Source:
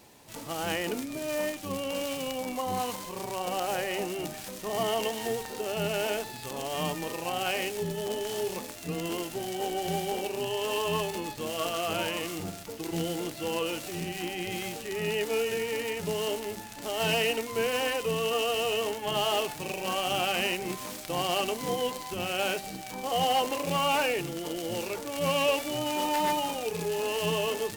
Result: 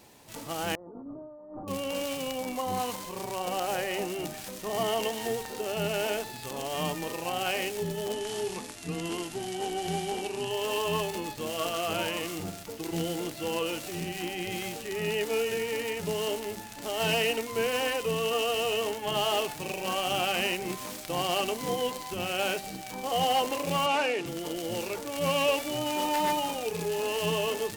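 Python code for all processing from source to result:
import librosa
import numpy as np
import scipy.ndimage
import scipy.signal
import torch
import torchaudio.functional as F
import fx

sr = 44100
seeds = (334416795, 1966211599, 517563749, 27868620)

y = fx.chain(x, sr, fx.hum_notches(base_hz=50, count=5),
    fx.over_compress(threshold_db=-43.0, ratio=-1.0),
    fx.steep_lowpass(hz=1200.0, slope=48), at=(0.75, 1.68))
y = fx.chain(y, sr, fx.brickwall_lowpass(high_hz=12000.0),
    fx.peak_eq(hz=560.0, db=-12.5, octaves=0.22), at=(8.13, 10.51))
y = fx.chain(y, sr, fx.highpass(hz=190.0, slope=24),
    fx.air_absorb(metres=54.0), at=(23.86, 24.26))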